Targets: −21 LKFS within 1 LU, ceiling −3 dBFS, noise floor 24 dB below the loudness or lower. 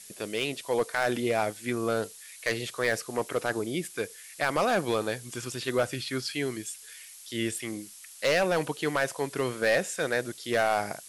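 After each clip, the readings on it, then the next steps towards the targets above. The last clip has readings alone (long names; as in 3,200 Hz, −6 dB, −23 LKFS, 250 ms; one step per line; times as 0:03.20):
share of clipped samples 0.7%; peaks flattened at −18.0 dBFS; background noise floor −48 dBFS; target noise floor −54 dBFS; integrated loudness −29.5 LKFS; sample peak −18.0 dBFS; target loudness −21.0 LKFS
→ clipped peaks rebuilt −18 dBFS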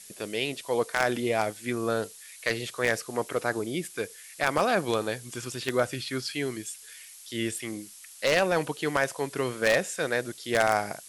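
share of clipped samples 0.0%; background noise floor −48 dBFS; target noise floor −53 dBFS
→ noise reduction from a noise print 6 dB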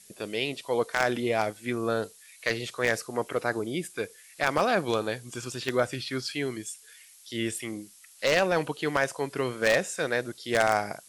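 background noise floor −54 dBFS; integrated loudness −28.5 LKFS; sample peak −9.0 dBFS; target loudness −21.0 LKFS
→ level +7.5 dB
brickwall limiter −3 dBFS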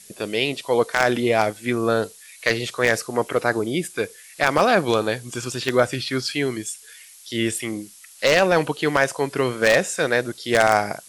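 integrated loudness −21.5 LKFS; sample peak −3.0 dBFS; background noise floor −47 dBFS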